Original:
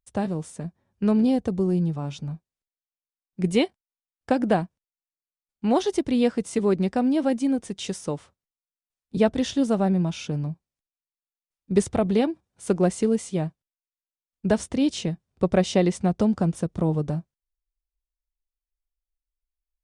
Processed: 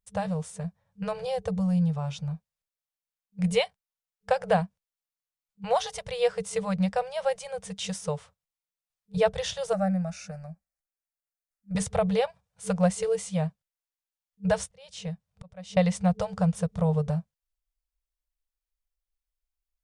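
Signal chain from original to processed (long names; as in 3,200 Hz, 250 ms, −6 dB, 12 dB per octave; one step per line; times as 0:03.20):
0:14.63–0:15.77: volume swells 710 ms
brick-wall band-stop 200–440 Hz
0:09.73–0:11.75: phaser with its sweep stopped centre 650 Hz, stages 8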